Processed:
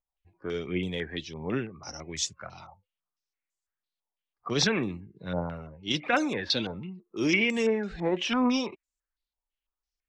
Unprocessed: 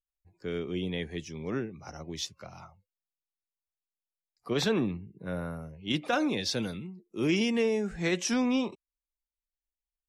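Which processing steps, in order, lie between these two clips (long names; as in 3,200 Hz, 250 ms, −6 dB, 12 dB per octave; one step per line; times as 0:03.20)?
phase shifter 1.3 Hz, delay 3.9 ms, feedback 34%
low-pass on a step sequencer 6 Hz 870–7,500 Hz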